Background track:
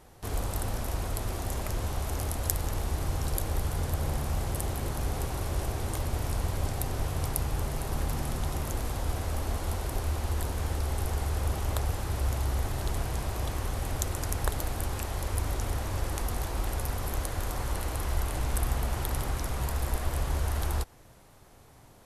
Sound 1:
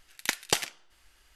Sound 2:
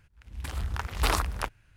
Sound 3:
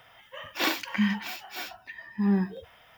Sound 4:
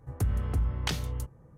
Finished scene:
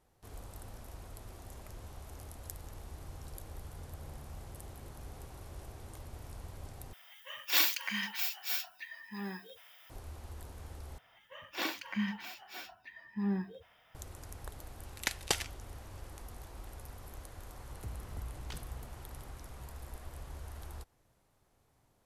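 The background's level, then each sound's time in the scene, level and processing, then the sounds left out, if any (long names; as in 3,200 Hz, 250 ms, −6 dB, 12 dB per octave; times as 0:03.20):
background track −16.5 dB
0:06.93: overwrite with 3 −8 dB + spectral tilt +4.5 dB per octave
0:10.98: overwrite with 3 −9 dB
0:14.78: mix in 1 −5.5 dB
0:17.63: mix in 4 −16.5 dB
not used: 2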